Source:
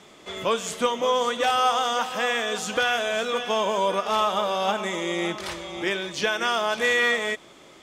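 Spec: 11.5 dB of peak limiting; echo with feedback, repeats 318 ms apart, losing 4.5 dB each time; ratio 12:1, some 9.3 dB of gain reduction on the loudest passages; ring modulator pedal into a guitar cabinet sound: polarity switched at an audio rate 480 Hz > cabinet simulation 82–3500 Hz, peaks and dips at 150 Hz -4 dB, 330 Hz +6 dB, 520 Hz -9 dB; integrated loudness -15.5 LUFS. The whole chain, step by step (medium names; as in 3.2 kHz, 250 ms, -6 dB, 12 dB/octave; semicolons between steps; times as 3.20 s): compression 12:1, threshold -27 dBFS; peak limiter -28 dBFS; feedback delay 318 ms, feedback 60%, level -4.5 dB; polarity switched at an audio rate 480 Hz; cabinet simulation 82–3500 Hz, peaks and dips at 150 Hz -4 dB, 330 Hz +6 dB, 520 Hz -9 dB; trim +20.5 dB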